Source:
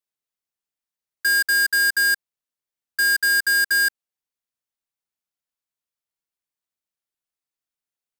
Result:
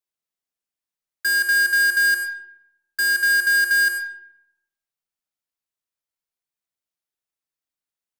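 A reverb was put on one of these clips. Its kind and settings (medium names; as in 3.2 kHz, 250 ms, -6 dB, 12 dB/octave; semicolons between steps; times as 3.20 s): algorithmic reverb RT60 0.85 s, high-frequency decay 0.65×, pre-delay 55 ms, DRR 7 dB; trim -1.5 dB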